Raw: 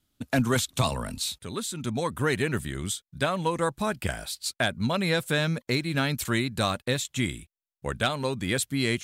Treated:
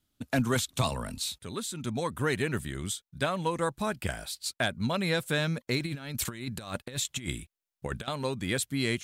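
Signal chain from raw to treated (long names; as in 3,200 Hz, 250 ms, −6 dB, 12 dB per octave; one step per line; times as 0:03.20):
0:05.79–0:08.08: compressor whose output falls as the input rises −31 dBFS, ratio −0.5
level −3 dB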